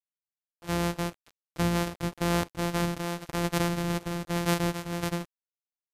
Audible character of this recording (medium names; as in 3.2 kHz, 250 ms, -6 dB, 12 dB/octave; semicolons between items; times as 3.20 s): a buzz of ramps at a fixed pitch in blocks of 256 samples; tremolo triangle 0.91 Hz, depth 35%; a quantiser's noise floor 8-bit, dither none; MP3